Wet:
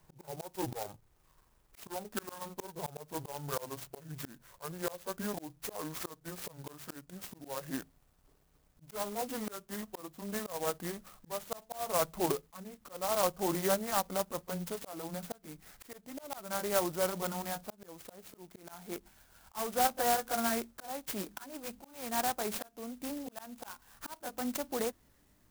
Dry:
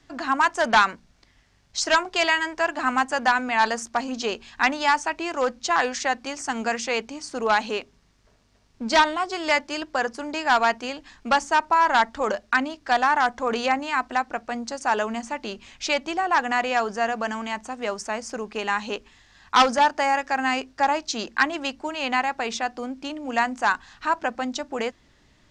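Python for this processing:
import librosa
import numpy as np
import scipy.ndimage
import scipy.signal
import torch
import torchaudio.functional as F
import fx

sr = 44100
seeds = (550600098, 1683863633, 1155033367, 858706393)

y = fx.pitch_glide(x, sr, semitones=-11.0, runs='ending unshifted')
y = fx.dynamic_eq(y, sr, hz=2300.0, q=1.7, threshold_db=-42.0, ratio=4.0, max_db=-4)
y = fx.auto_swell(y, sr, attack_ms=406.0)
y = fx.clock_jitter(y, sr, seeds[0], jitter_ms=0.1)
y = y * librosa.db_to_amplitude(-5.5)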